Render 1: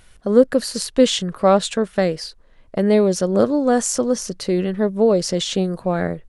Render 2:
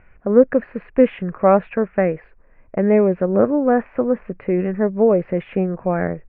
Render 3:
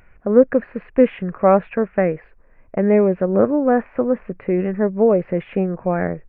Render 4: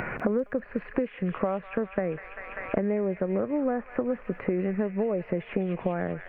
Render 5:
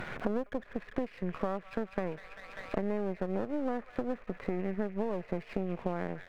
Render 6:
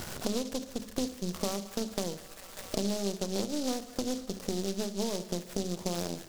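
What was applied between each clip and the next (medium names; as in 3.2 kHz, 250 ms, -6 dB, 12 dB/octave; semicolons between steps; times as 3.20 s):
Chebyshev low-pass 2.5 kHz, order 6; trim +1 dB
wow and flutter 23 cents
compression 3:1, threshold -24 dBFS, peak gain reduction 13.5 dB; feedback echo behind a high-pass 197 ms, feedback 74%, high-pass 2.2 kHz, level -3.5 dB; three bands compressed up and down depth 100%; trim -3 dB
partial rectifier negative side -12 dB; trim -4 dB
tape echo 72 ms, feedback 72%, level -15.5 dB; on a send at -13 dB: reverberation RT60 0.45 s, pre-delay 3 ms; on the sum: delay time shaken by noise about 4.9 kHz, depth 0.14 ms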